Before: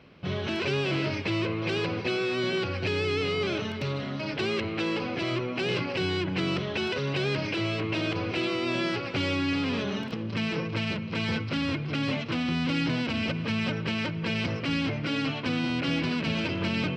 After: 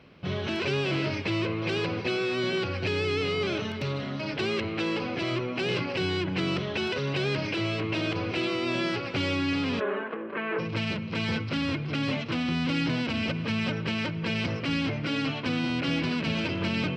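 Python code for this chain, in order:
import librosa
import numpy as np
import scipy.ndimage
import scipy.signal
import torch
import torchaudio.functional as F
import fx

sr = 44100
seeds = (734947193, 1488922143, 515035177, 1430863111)

y = fx.cabinet(x, sr, low_hz=260.0, low_slope=24, high_hz=2300.0, hz=(270.0, 400.0, 600.0, 1100.0, 1600.0), db=(-5, 7, 5, 7, 8), at=(9.79, 10.58), fade=0.02)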